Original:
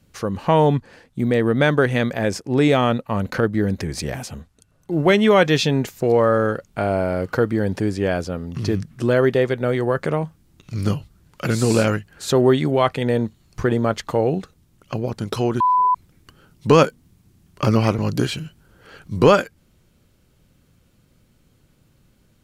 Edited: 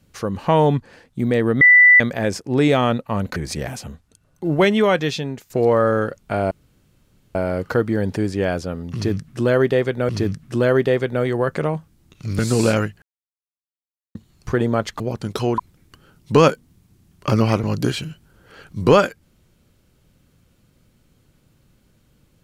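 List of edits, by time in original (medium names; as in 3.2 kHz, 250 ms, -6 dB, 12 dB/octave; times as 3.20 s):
1.61–2.00 s: bleep 1.98 kHz -6.5 dBFS
3.36–3.83 s: delete
5.05–5.97 s: fade out, to -13.5 dB
6.98 s: insert room tone 0.84 s
8.57–9.72 s: loop, 2 plays
10.87–11.50 s: delete
12.13–13.26 s: mute
14.11–14.97 s: delete
15.55–15.93 s: delete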